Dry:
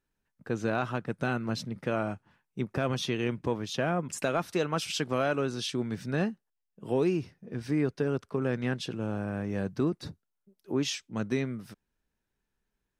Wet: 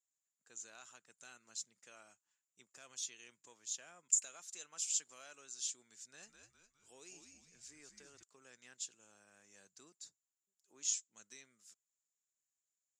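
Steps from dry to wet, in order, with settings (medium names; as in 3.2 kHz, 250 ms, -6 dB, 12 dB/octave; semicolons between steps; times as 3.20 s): band-pass filter 7.1 kHz, Q 19; 6.02–8.23 s: frequency-shifting echo 205 ms, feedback 47%, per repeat -97 Hz, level -6 dB; trim +15.5 dB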